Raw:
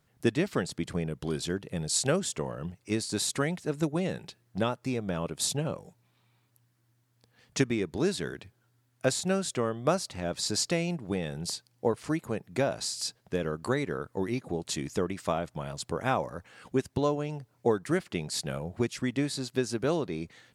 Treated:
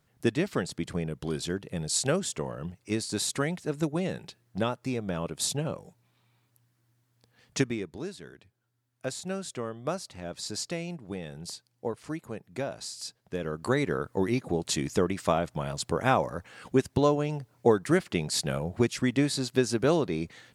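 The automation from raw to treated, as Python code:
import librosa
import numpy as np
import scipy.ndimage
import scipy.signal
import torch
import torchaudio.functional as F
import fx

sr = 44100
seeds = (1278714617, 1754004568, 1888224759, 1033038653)

y = fx.gain(x, sr, db=fx.line((7.6, 0.0), (8.17, -12.0), (9.42, -5.5), (13.19, -5.5), (13.84, 4.0)))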